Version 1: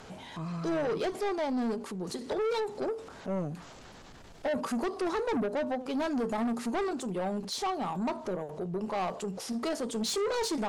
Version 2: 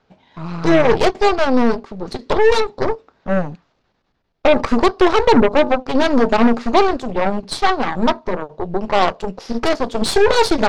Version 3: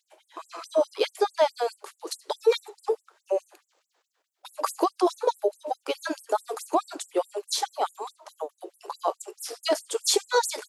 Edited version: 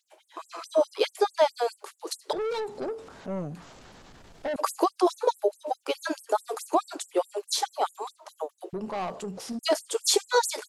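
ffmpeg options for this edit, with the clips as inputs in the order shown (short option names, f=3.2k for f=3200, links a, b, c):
-filter_complex "[0:a]asplit=2[a][b];[2:a]asplit=3[c][d][e];[c]atrim=end=2.332[f];[a]atrim=start=2.328:end=4.562[g];[d]atrim=start=4.558:end=8.732[h];[b]atrim=start=8.728:end=9.592[i];[e]atrim=start=9.588[j];[f][g]acrossfade=d=0.004:c1=hsin:c2=hsin[k];[k][h]acrossfade=d=0.004:c1=hsin:c2=hsin[l];[l][i]acrossfade=d=0.004:c1=hsin:c2=hsin[m];[m][j]acrossfade=d=0.004:c1=hsin:c2=hsin"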